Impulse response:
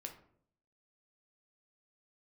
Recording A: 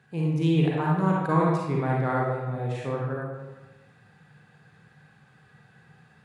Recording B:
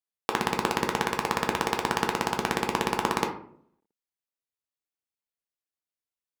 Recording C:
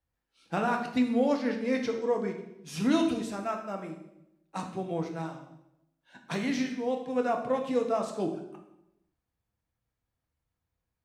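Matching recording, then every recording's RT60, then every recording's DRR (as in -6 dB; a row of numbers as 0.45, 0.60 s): B; 1.2, 0.60, 0.85 s; -4.0, 3.0, 2.0 dB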